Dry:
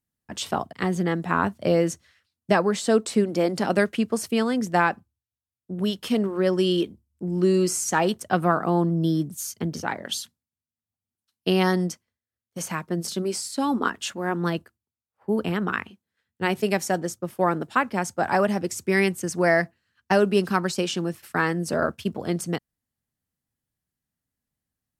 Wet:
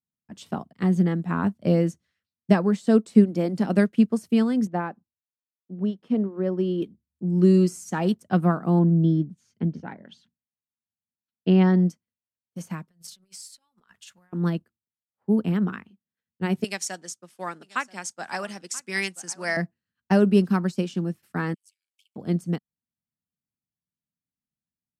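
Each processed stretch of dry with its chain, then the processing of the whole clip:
4.67–6.82 s: block-companded coder 7-bit + band-pass filter 540 Hz, Q 0.53
8.79–11.86 s: low-pass 2.8 kHz + band-stop 1.2 kHz, Q 9.2
12.88–14.33 s: compressor with a negative ratio -31 dBFS, ratio -0.5 + amplifier tone stack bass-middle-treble 10-0-10
16.64–19.57 s: frequency weighting ITU-R 468 + delay 982 ms -16.5 dB
21.54–22.16 s: compression 4:1, threshold -26 dBFS + ring modulator 49 Hz + rippled Chebyshev high-pass 2.2 kHz, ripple 6 dB
whole clip: peaking EQ 190 Hz +12 dB 1.5 oct; upward expansion 1.5:1, over -35 dBFS; trim -3 dB

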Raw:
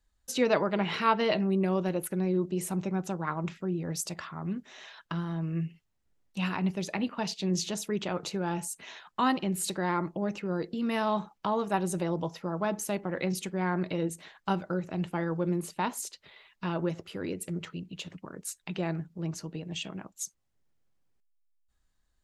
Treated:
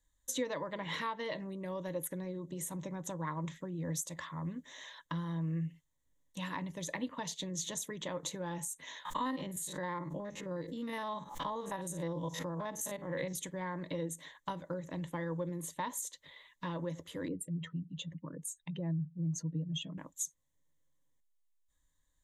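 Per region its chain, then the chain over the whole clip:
9.05–13.33 s: spectrogram pixelated in time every 50 ms + swell ahead of each attack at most 79 dB/s
17.28–19.98 s: spectral contrast enhancement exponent 1.8 + peaking EQ 110 Hz +8.5 dB 1.2 oct
whole clip: peaking EQ 8.9 kHz +14 dB 0.44 oct; compression 6:1, threshold -30 dBFS; rippled EQ curve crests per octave 1.1, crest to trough 12 dB; trim -5 dB

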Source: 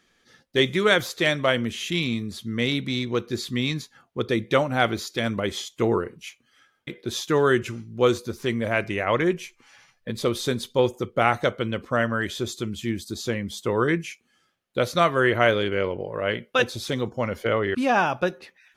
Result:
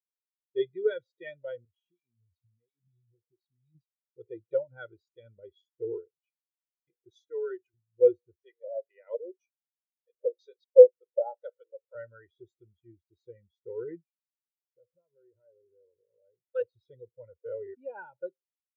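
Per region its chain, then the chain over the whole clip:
1.65–3.75 s: bass shelf 260 Hz +7.5 dB + compression 8:1, threshold -29 dBFS + cancelling through-zero flanger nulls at 1.4 Hz, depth 5.7 ms
7.10–7.74 s: high-pass 520 Hz 6 dB/octave + treble shelf 6 kHz +7 dB
8.39–11.95 s: high-pass 450 Hz 24 dB/octave + LFO low-pass square 2 Hz 660–5800 Hz
14.03–16.44 s: low-pass 1.3 kHz + compression 3:1, threshold -34 dBFS
whole clip: band-stop 1.1 kHz, Q 6.2; comb 2.1 ms, depth 63%; spectral contrast expander 2.5:1

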